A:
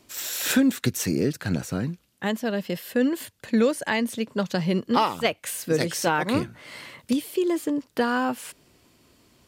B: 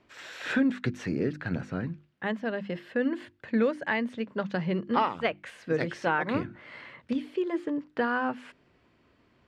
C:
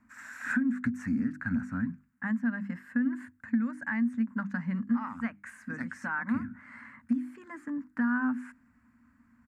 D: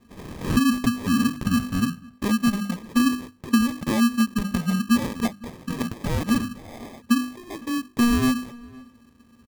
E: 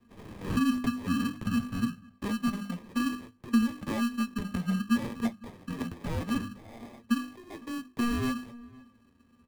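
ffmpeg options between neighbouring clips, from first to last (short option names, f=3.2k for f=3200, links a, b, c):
-af "lowpass=2.5k,equalizer=f=1.7k:w=1.6:g=4,bandreject=f=50:t=h:w=6,bandreject=f=100:t=h:w=6,bandreject=f=150:t=h:w=6,bandreject=f=200:t=h:w=6,bandreject=f=250:t=h:w=6,bandreject=f=300:t=h:w=6,bandreject=f=350:t=h:w=6,volume=-4.5dB"
-af "alimiter=limit=-19dB:level=0:latency=1:release=240,firequalizer=gain_entry='entry(100,0);entry(150,-10);entry(240,12);entry(360,-26);entry(960,-3);entry(1600,3);entry(3200,-23);entry(7300,2)':delay=0.05:min_phase=1,acompressor=threshold=-24dB:ratio=6"
-filter_complex "[0:a]acrusher=samples=31:mix=1:aa=0.000001,asplit=2[a][b];[b]adelay=507.3,volume=-23dB,highshelf=f=4k:g=-11.4[c];[a][c]amix=inputs=2:normalize=0,volume=8.5dB"
-filter_complex "[0:a]flanger=delay=8.5:depth=3.4:regen=54:speed=0.58:shape=sinusoidal,acrossover=split=310|1200|3900[a][b][c][d];[d]aeval=exprs='max(val(0),0)':c=same[e];[a][b][c][e]amix=inputs=4:normalize=0,volume=-3.5dB"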